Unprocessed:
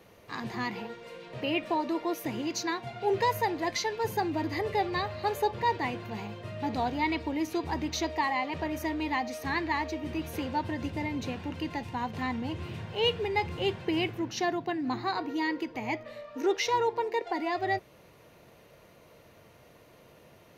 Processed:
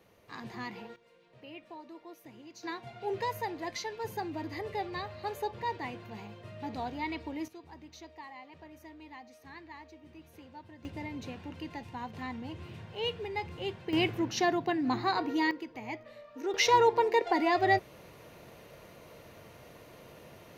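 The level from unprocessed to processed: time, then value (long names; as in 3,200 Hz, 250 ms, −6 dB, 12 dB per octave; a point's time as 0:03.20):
−7 dB
from 0:00.96 −18 dB
from 0:02.63 −7 dB
from 0:07.48 −18.5 dB
from 0:10.85 −7 dB
from 0:13.93 +1.5 dB
from 0:15.51 −7 dB
from 0:16.54 +4 dB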